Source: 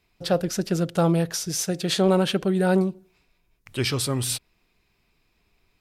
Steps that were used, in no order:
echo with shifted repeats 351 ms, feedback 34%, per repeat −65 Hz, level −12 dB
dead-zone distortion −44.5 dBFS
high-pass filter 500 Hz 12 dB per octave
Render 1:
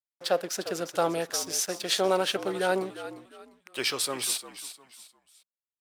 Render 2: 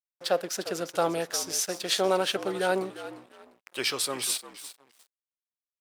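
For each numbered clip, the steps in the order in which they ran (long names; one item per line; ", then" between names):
dead-zone distortion, then echo with shifted repeats, then high-pass filter
echo with shifted repeats, then dead-zone distortion, then high-pass filter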